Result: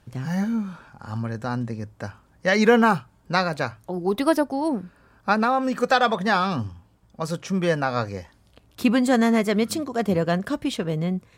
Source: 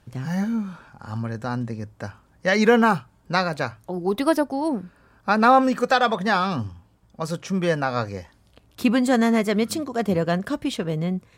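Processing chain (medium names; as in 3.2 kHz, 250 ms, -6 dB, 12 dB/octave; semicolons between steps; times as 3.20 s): 5.33–5.82 s: compression 4:1, threshold -19 dBFS, peak gain reduction 7.5 dB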